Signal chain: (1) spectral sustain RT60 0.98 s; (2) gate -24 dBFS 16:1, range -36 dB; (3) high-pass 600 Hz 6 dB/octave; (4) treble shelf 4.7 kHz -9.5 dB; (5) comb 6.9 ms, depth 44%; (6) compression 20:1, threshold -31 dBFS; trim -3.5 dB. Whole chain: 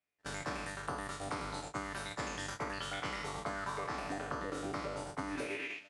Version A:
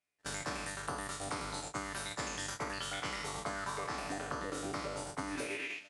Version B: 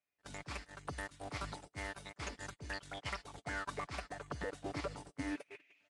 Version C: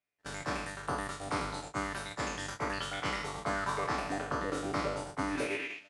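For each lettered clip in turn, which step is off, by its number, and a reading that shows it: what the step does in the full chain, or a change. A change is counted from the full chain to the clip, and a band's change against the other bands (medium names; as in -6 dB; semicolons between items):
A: 4, 8 kHz band +6.5 dB; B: 1, 125 Hz band +3.0 dB; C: 6, mean gain reduction 3.0 dB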